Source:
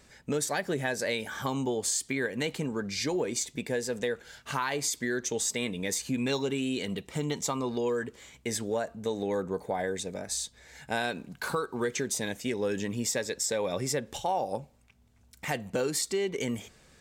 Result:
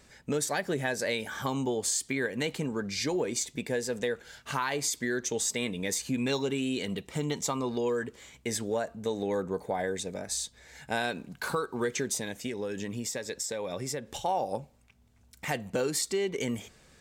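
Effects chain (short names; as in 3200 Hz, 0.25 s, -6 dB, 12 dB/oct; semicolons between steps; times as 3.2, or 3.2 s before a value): 12.16–14.24 compressor, threshold -31 dBFS, peak gain reduction 6 dB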